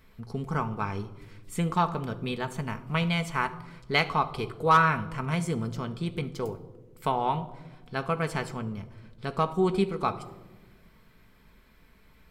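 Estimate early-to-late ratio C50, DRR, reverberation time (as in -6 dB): 15.0 dB, 6.0 dB, 1.2 s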